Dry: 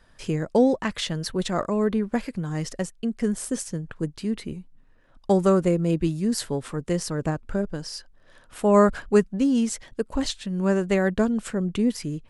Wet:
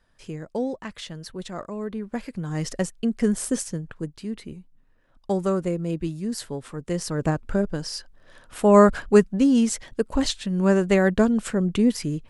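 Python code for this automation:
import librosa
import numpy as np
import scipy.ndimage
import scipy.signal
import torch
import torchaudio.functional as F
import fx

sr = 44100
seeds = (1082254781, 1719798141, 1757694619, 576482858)

y = fx.gain(x, sr, db=fx.line((1.89, -8.5), (2.74, 3.0), (3.53, 3.0), (4.14, -4.5), (6.74, -4.5), (7.29, 3.0)))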